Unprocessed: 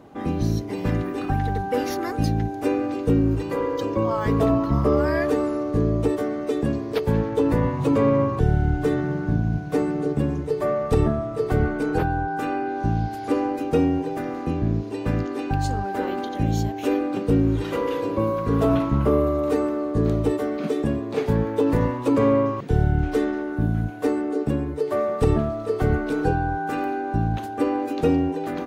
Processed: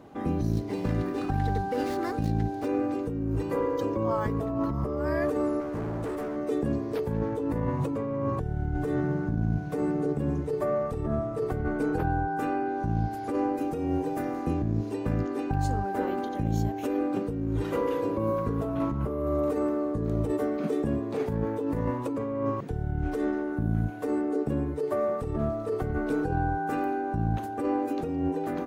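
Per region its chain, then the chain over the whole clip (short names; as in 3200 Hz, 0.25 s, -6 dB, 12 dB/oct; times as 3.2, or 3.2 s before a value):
0.52–2.68 median filter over 9 samples + bell 4300 Hz +10 dB 1.1 oct
5.6–6.36 HPF 79 Hz + notches 60/120/180/240/300/360/420/480/540 Hz + hard clip -27.5 dBFS
13.61–14.94 high shelf 4900 Hz +6.5 dB + doubler 27 ms -13 dB
whole clip: dynamic EQ 3600 Hz, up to -7 dB, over -48 dBFS, Q 0.73; negative-ratio compressor -23 dBFS, ratio -1; gain -4 dB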